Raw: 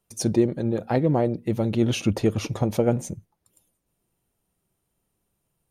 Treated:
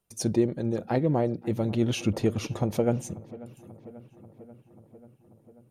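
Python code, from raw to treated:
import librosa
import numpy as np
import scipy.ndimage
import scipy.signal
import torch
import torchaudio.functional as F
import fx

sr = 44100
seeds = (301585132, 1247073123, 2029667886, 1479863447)

y = fx.echo_filtered(x, sr, ms=538, feedback_pct=70, hz=2800.0, wet_db=-19.5)
y = F.gain(torch.from_numpy(y), -3.5).numpy()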